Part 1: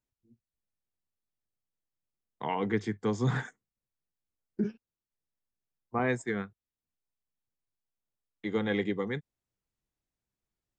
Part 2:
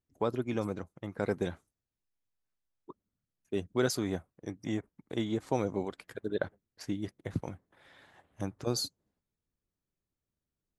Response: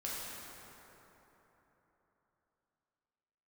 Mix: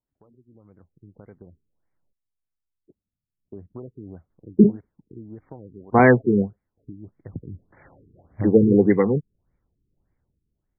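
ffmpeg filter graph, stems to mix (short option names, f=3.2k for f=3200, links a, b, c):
-filter_complex "[0:a]dynaudnorm=f=220:g=21:m=6dB,bandreject=f=1.2k:w=12,volume=1dB,asplit=3[a][b][c];[a]atrim=end=2.13,asetpts=PTS-STARTPTS,afade=t=out:st=2.126:d=0.004:c=hsin[d];[b]atrim=start=2.13:end=4.3,asetpts=PTS-STARTPTS,volume=0[e];[c]atrim=start=4.3,asetpts=PTS-STARTPTS,afade=t=in:d=0.004:c=hsin[f];[d][e][f]concat=n=3:v=0:a=1[g];[1:a]acompressor=threshold=-38dB:ratio=3,lowshelf=f=190:g=11,volume=-2dB,afade=t=in:st=3.26:d=0.35:silence=0.421697,afade=t=in:st=7.28:d=0.58:silence=0.251189[h];[g][h]amix=inputs=2:normalize=0,dynaudnorm=f=220:g=7:m=12dB,afftfilt=real='re*lt(b*sr/1024,430*pow(2400/430,0.5+0.5*sin(2*PI*1.7*pts/sr)))':imag='im*lt(b*sr/1024,430*pow(2400/430,0.5+0.5*sin(2*PI*1.7*pts/sr)))':win_size=1024:overlap=0.75"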